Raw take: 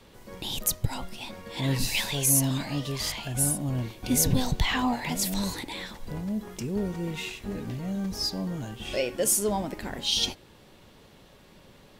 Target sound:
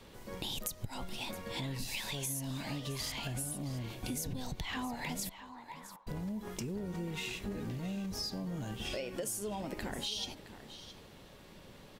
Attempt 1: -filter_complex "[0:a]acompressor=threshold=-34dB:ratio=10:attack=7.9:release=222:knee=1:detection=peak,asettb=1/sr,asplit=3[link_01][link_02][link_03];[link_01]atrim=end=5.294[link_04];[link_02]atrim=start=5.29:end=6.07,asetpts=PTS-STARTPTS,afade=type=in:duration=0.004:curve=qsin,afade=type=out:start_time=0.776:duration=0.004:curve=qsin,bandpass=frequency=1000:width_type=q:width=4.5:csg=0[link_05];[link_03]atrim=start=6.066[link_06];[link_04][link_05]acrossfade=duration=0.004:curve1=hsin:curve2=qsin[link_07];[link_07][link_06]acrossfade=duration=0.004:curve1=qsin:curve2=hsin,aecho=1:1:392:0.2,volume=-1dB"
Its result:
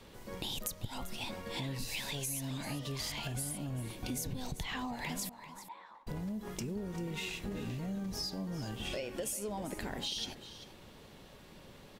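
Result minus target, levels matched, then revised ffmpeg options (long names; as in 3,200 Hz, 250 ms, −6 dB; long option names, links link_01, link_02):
echo 276 ms early
-filter_complex "[0:a]acompressor=threshold=-34dB:ratio=10:attack=7.9:release=222:knee=1:detection=peak,asettb=1/sr,asplit=3[link_01][link_02][link_03];[link_01]atrim=end=5.294[link_04];[link_02]atrim=start=5.29:end=6.07,asetpts=PTS-STARTPTS,afade=type=in:duration=0.004:curve=qsin,afade=type=out:start_time=0.776:duration=0.004:curve=qsin,bandpass=frequency=1000:width_type=q:width=4.5:csg=0[link_05];[link_03]atrim=start=6.066[link_06];[link_04][link_05]acrossfade=duration=0.004:curve1=hsin:curve2=qsin[link_07];[link_07][link_06]acrossfade=duration=0.004:curve1=qsin:curve2=hsin,aecho=1:1:668:0.2,volume=-1dB"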